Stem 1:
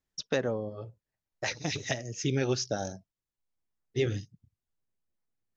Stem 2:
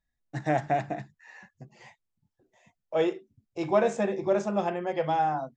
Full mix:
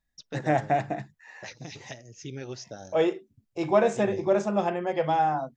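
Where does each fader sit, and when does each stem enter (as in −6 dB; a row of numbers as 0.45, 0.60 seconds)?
−9.5, +2.0 decibels; 0.00, 0.00 seconds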